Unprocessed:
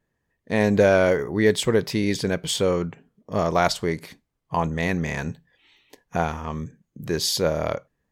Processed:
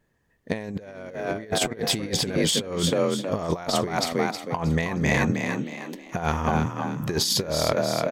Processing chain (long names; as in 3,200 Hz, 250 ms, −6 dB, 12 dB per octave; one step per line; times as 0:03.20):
echo with shifted repeats 316 ms, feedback 37%, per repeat +40 Hz, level −6.5 dB
compressor whose output falls as the input rises −26 dBFS, ratio −0.5
level +1.5 dB